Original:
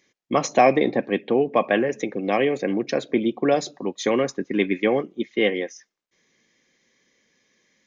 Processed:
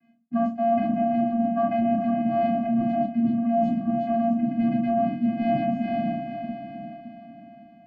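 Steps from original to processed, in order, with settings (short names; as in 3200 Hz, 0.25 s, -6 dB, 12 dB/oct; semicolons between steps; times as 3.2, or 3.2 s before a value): LPF 1500 Hz 12 dB/oct; diffused feedback echo 0.506 s, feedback 44%, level -9.5 dB; vocoder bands 8, square 230 Hz; shoebox room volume 250 m³, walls furnished, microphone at 3.9 m; reverse; compressor 10:1, threshold -23 dBFS, peak gain reduction 19.5 dB; reverse; gain +3 dB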